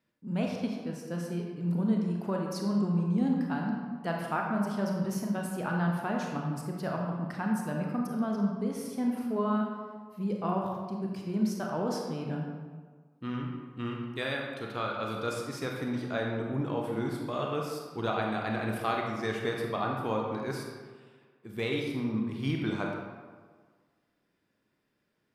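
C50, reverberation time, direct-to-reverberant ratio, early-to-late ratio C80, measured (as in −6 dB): 1.5 dB, 1.6 s, −0.5 dB, 3.5 dB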